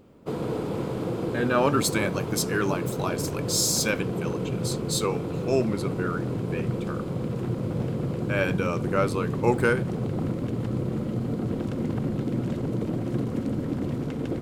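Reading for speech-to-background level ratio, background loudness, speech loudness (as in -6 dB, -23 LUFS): 2.0 dB, -29.5 LUFS, -27.5 LUFS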